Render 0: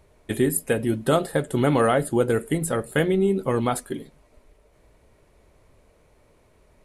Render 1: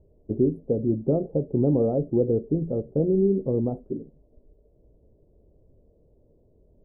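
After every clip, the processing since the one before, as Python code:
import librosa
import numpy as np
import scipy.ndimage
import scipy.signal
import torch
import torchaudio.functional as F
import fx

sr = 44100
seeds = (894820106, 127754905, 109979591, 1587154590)

y = scipy.signal.sosfilt(scipy.signal.cheby2(4, 60, 1800.0, 'lowpass', fs=sr, output='sos'), x)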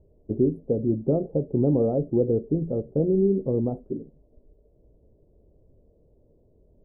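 y = x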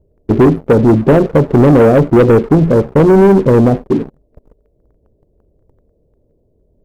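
y = fx.leveller(x, sr, passes=3)
y = y * 10.0 ** (8.5 / 20.0)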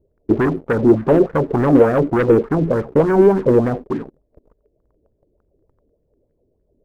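y = fx.bell_lfo(x, sr, hz=3.4, low_hz=290.0, high_hz=1800.0, db=12)
y = y * 10.0 ** (-10.0 / 20.0)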